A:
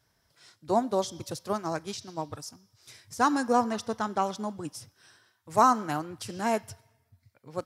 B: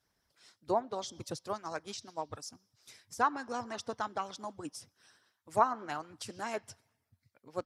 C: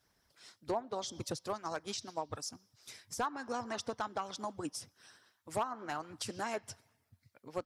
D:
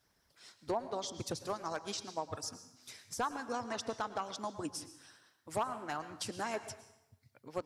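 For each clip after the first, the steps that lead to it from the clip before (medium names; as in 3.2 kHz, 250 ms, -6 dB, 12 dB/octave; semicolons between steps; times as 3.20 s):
harmonic-percussive split harmonic -13 dB; low-pass that closes with the level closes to 2.3 kHz, closed at -24 dBFS; trim -2.5 dB
compression 2.5:1, threshold -39 dBFS, peak gain reduction 13 dB; hard clipper -30 dBFS, distortion -20 dB; trim +4 dB
plate-style reverb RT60 0.81 s, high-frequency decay 0.85×, pre-delay 95 ms, DRR 12 dB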